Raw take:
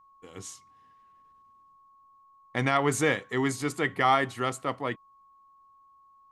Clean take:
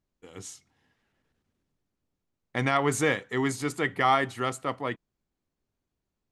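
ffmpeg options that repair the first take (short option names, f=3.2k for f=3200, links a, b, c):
-af "bandreject=f=1.1k:w=30"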